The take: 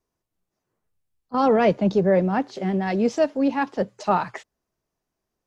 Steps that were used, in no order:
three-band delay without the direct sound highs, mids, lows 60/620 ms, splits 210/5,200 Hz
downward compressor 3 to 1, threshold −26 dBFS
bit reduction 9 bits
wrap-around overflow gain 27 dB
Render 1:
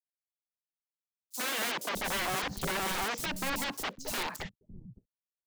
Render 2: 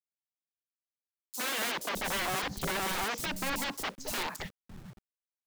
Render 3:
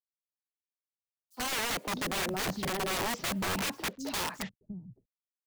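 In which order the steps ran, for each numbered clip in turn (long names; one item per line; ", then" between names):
bit reduction, then downward compressor, then wrap-around overflow, then three-band delay without the direct sound
downward compressor, then wrap-around overflow, then three-band delay without the direct sound, then bit reduction
bit reduction, then downward compressor, then three-band delay without the direct sound, then wrap-around overflow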